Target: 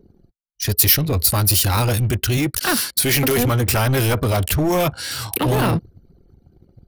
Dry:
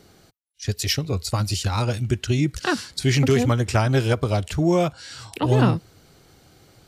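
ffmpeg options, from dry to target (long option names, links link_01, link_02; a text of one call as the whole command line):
ffmpeg -i in.wav -filter_complex "[0:a]asettb=1/sr,asplit=3[link_01][link_02][link_03];[link_01]atrim=end=2.374[link_04];[link_02]atrim=start=2.37:end=3.38,asetpts=PTS-STARTPTS,afade=type=in:duration=0.004:curve=qsin,afade=type=out:start_time=1.006:duration=0.004:curve=qsin,highpass=frequency=310:poles=1[link_05];[link_03]atrim=start=3.376[link_06];[link_04][link_05]acrossfade=duration=0.004:curve1=hsin:curve2=qsin[link_07];[link_07][link_06]acrossfade=duration=0.004:curve1=qsin:curve2=hsin,apsyclip=22.5dB,asplit=2[link_08][link_09];[link_09]aeval=exprs='0.335*(abs(mod(val(0)/0.335+3,4)-2)-1)':channel_layout=same,volume=-10.5dB[link_10];[link_08][link_10]amix=inputs=2:normalize=0,anlmdn=3980,aexciter=amount=9.6:drive=4:freq=10000,volume=-13.5dB" out.wav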